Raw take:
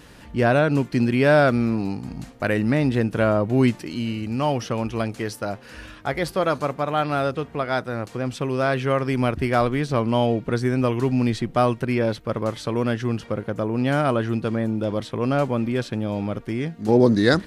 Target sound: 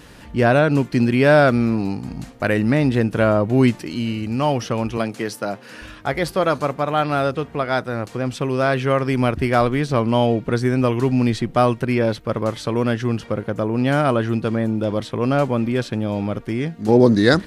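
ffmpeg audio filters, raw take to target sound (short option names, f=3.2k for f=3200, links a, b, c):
-filter_complex "[0:a]asettb=1/sr,asplit=3[a][b][c];[a]atrim=end=4.974[d];[b]atrim=start=4.97:end=5.82,asetpts=PTS-STARTPTS,afade=t=in:d=0.004:c=qsin,afade=t=out:st=0.846:d=0.004:c=qsin,highpass=f=130:w=0.5412,highpass=f=130:w=1.3066[e];[c]atrim=start=5.816[f];[d][e]acrossfade=d=0.004:c1=hsin:c2=qsin[g];[g][f]acrossfade=d=0.004:c1=qsin:c2=hsin,volume=3dB"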